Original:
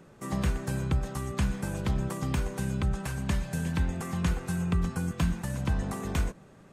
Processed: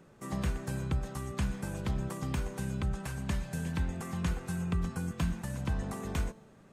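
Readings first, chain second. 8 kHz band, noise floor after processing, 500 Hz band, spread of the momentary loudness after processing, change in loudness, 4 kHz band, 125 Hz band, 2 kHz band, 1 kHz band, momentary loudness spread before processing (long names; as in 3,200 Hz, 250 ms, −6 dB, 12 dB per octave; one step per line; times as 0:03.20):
−4.0 dB, −58 dBFS, −4.0 dB, 3 LU, −4.5 dB, −4.0 dB, −4.5 dB, −4.5 dB, −4.0 dB, 3 LU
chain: tuned comb filter 220 Hz, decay 1 s, mix 40%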